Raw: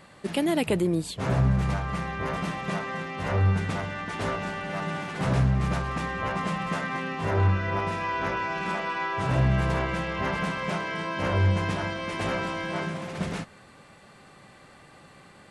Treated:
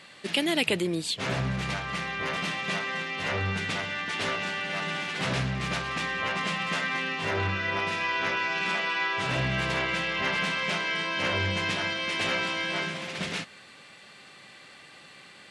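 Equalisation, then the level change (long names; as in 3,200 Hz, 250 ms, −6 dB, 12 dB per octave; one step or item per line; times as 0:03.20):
meter weighting curve D
−2.5 dB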